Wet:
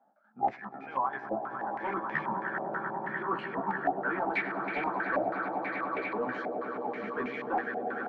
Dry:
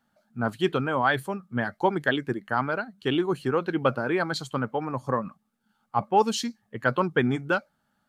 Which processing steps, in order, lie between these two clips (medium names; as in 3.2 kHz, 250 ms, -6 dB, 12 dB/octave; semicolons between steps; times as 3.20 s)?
pitch shift switched off and on -10.5 st, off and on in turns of 396 ms; high-pass 190 Hz 24 dB/octave; bass shelf 390 Hz -8.5 dB; reverse; compression 6:1, threshold -37 dBFS, peak gain reduction 17 dB; reverse; trance gate "x.xxx...x..xx.xx" 126 bpm -12 dB; doubling 15 ms -3 dB; echo with a slow build-up 99 ms, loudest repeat 8, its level -11 dB; in parallel at -6 dB: wavefolder -34.5 dBFS; on the sum: step-sequenced low-pass 6.2 Hz 720–2300 Hz